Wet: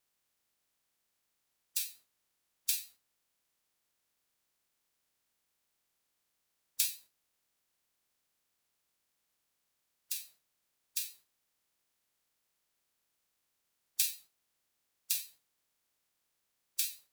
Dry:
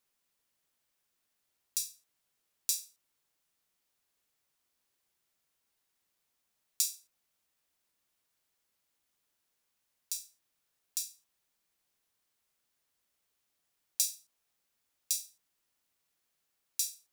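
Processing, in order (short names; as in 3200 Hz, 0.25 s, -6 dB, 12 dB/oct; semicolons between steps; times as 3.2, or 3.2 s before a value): spectral limiter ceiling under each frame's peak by 22 dB; flutter echo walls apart 7.8 m, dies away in 0.23 s; vibrato 9.2 Hz 59 cents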